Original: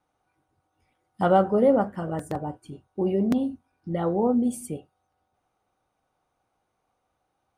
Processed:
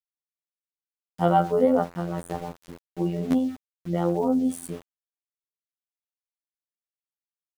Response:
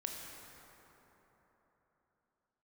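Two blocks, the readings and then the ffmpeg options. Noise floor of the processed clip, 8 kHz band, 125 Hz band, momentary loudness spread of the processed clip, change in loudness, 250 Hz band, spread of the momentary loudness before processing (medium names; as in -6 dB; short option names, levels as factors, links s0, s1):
under -85 dBFS, 0.0 dB, +1.5 dB, 18 LU, -0.5 dB, -0.5 dB, 17 LU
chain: -af "afftfilt=real='hypot(re,im)*cos(PI*b)':imag='0':win_size=2048:overlap=0.75,aeval=exprs='val(0)*gte(abs(val(0)),0.00631)':c=same,volume=1.41"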